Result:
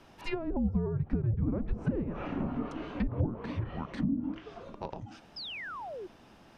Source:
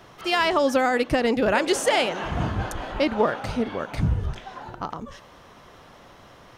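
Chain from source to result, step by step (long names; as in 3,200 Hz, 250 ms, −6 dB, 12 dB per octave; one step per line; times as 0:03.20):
frequency shifter −340 Hz
treble cut that deepens with the level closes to 390 Hz, closed at −17.5 dBFS
sound drawn into the spectrogram fall, 0:05.36–0:06.07, 340–5,300 Hz −33 dBFS
level −7.5 dB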